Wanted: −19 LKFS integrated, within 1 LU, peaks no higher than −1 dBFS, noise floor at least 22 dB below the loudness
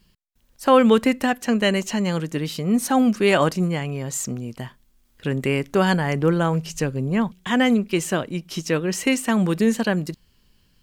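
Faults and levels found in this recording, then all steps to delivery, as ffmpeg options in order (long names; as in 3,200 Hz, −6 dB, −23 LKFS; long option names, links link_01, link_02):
integrated loudness −21.5 LKFS; sample peak −4.0 dBFS; target loudness −19.0 LKFS
→ -af "volume=2.5dB"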